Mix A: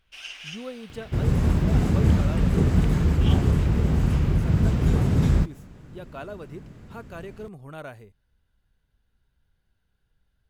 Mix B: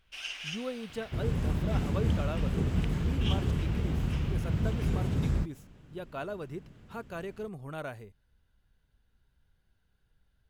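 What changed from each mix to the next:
second sound -9.0 dB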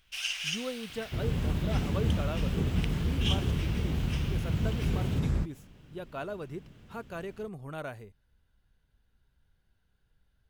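first sound: add tilt +3.5 dB/oct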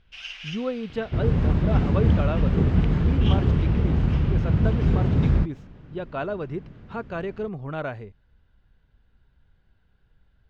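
speech +9.0 dB; second sound +9.0 dB; master: add air absorption 210 m

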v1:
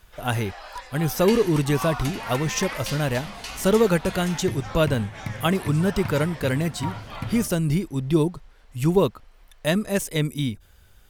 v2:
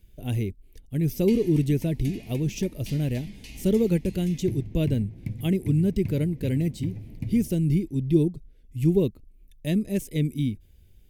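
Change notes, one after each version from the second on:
first sound: muted; master: add EQ curve 340 Hz 0 dB, 1300 Hz -28 dB, 2200 Hz -8 dB, 4200 Hz -11 dB, 8500 Hz -11 dB, 12000 Hz -7 dB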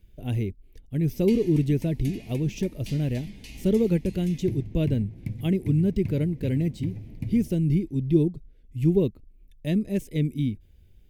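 speech: add bell 11000 Hz -8 dB 1.9 oct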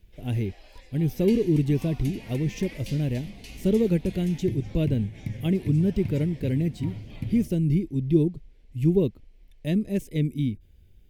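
first sound: unmuted

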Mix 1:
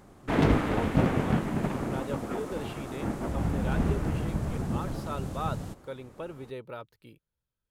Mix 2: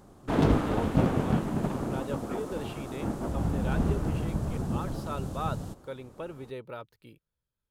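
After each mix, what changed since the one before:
background: add bell 2100 Hz -7.5 dB 0.82 oct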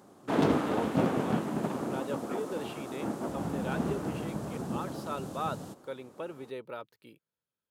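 master: add HPF 200 Hz 12 dB/oct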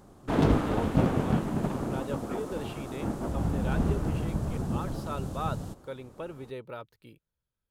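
master: remove HPF 200 Hz 12 dB/oct

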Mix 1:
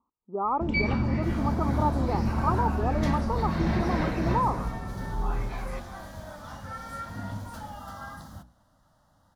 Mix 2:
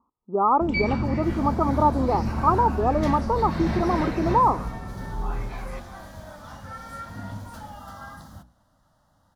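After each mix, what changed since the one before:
speech +7.5 dB; first sound: remove air absorption 50 m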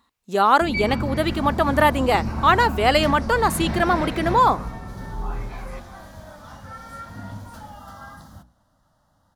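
speech: remove rippled Chebyshev low-pass 1300 Hz, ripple 6 dB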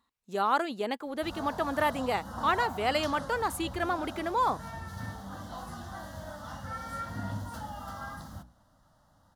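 speech -10.5 dB; first sound: muted; reverb: off

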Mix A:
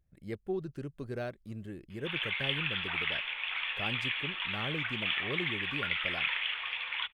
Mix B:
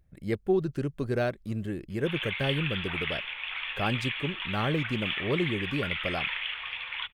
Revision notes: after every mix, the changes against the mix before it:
speech +9.5 dB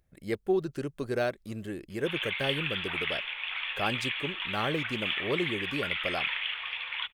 master: add tone controls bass -8 dB, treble +4 dB

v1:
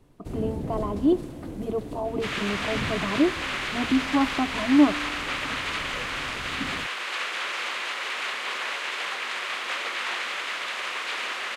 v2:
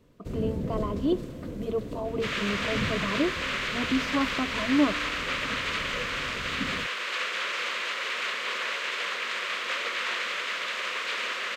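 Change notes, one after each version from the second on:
speech: add tilt +2 dB/oct; master: add thirty-one-band EQ 200 Hz +4 dB, 315 Hz -4 dB, 500 Hz +5 dB, 800 Hz -11 dB, 10000 Hz -10 dB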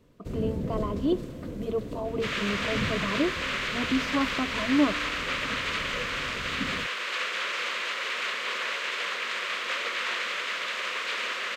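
none

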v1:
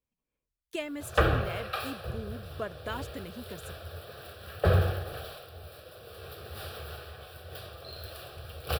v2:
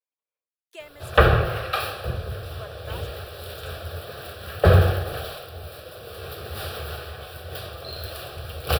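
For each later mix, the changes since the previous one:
speech: add ladder high-pass 420 Hz, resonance 20%; background +8.5 dB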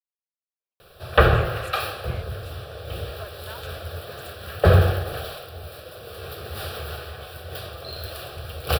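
speech: entry +0.60 s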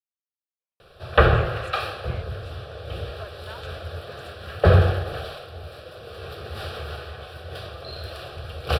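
master: add air absorption 62 m

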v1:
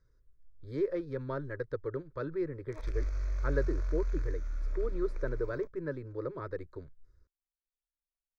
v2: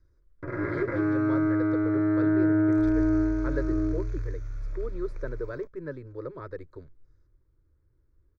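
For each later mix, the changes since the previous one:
first sound: unmuted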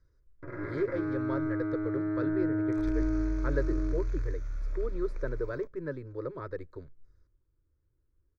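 first sound -8.0 dB; reverb: on, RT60 0.50 s

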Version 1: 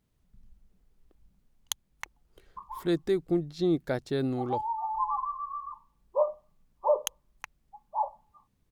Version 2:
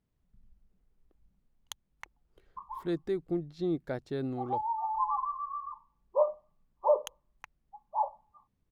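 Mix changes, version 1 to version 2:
speech -5.0 dB; master: add high shelf 3700 Hz -9 dB

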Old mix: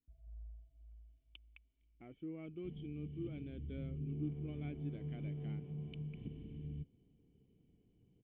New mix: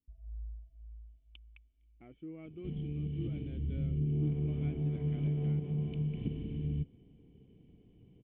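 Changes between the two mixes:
first sound: remove HPF 83 Hz; second sound +10.5 dB

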